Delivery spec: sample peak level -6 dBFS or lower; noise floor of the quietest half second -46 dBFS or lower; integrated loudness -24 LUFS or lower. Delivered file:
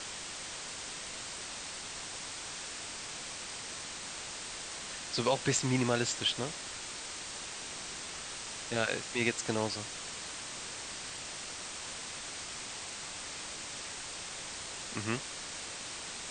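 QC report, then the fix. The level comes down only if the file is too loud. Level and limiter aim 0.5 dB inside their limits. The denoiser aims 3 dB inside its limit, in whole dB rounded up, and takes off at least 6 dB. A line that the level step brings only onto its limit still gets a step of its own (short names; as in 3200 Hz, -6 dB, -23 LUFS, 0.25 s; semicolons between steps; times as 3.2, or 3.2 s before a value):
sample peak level -13.5 dBFS: OK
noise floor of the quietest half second -43 dBFS: fail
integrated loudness -36.5 LUFS: OK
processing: denoiser 6 dB, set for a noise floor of -43 dBFS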